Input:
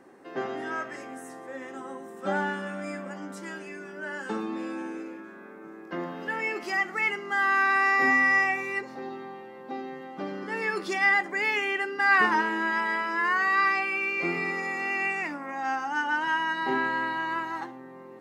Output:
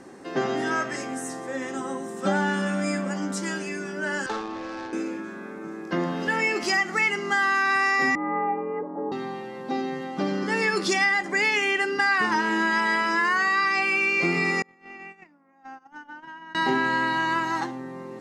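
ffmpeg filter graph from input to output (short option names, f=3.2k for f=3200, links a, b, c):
-filter_complex "[0:a]asettb=1/sr,asplit=3[a][b][c];[a]atrim=end=4.264[d];[b]atrim=start=4.26:end=4.93,asetpts=PTS-STARTPTS,afade=t=in:d=0.004:c=qsin,afade=t=out:st=0.666:d=0.004:c=qsin,highpass=590,lowpass=6.8k,adynamicsmooth=sensitivity=7:basefreq=760[e];[c]atrim=start=4.926[f];[d][e]acrossfade=d=0.004:c1=hsin:c2=qsin[g];[g][f]acrossfade=d=0.004:c1=qsin:c2=hsin,asettb=1/sr,asplit=3[h][i][j];[h]atrim=end=8.154[k];[i]atrim=start=8.15:end=9.12,asetpts=PTS-STARTPTS,afade=t=in:d=0.004:c=qsin,afade=t=out:st=0.966:d=0.004:c=qsin,lowpass=f=1k:w=0.5412,lowpass=f=1k:w=1.3066,afreqshift=47[l];[j]atrim=start=9.116[m];[k][l]acrossfade=d=0.004:c1=hsin:c2=qsin[n];[n][m]acrossfade=d=0.004:c1=qsin:c2=hsin,asettb=1/sr,asplit=3[o][p][q];[o]atrim=end=14.624[r];[p]atrim=start=14.62:end=16.55,asetpts=PTS-STARTPTS,afade=t=in:d=0.004:c=qsin,afade=t=out:st=1.926:d=0.004:c=qsin,agate=range=-31dB:threshold=-28dB:ratio=16:release=100:detection=peak,lowpass=f=1.3k:p=1,acompressor=threshold=-46dB:ratio=6:attack=3.2:release=140:knee=1:detection=peak[s];[q]atrim=start=16.546[t];[r][s]acrossfade=d=0.004:c1=hsin:c2=qsin[u];[u][t]acrossfade=d=0.004:c1=qsin:c2=hsin,lowpass=7k,bass=f=250:g=7,treble=f=4k:g=13,acompressor=threshold=-26dB:ratio=6,volume=6.5dB"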